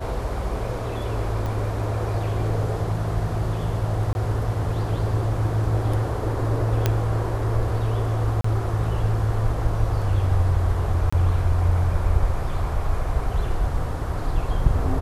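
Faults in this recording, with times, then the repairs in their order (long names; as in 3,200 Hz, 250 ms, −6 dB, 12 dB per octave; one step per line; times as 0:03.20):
0:01.46: click
0:04.13–0:04.15: drop-out 21 ms
0:06.86: click −6 dBFS
0:08.41–0:08.44: drop-out 34 ms
0:11.10–0:11.12: drop-out 25 ms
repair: click removal
repair the gap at 0:04.13, 21 ms
repair the gap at 0:08.41, 34 ms
repair the gap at 0:11.10, 25 ms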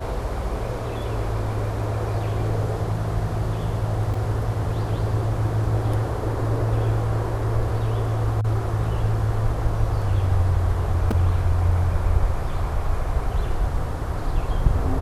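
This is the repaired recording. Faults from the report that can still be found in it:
none of them is left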